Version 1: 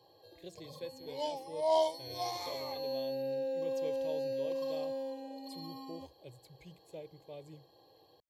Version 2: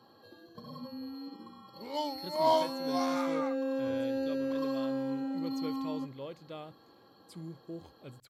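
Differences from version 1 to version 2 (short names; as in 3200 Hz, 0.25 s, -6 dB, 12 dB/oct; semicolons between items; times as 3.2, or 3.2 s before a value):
speech: entry +1.80 s; second sound: entry +0.75 s; master: remove fixed phaser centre 560 Hz, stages 4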